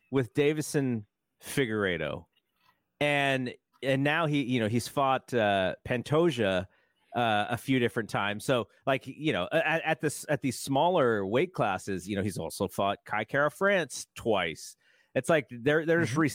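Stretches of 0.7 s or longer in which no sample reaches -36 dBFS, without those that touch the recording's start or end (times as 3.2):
2.18–3.01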